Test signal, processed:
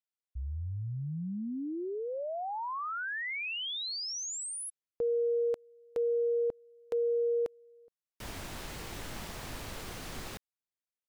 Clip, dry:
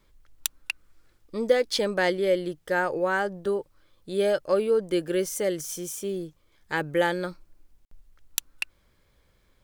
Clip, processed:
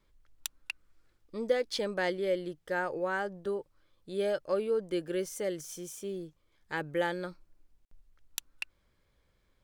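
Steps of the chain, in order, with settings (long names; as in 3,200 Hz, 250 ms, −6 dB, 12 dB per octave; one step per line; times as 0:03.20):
high-shelf EQ 8,900 Hz −5.5 dB
level −7 dB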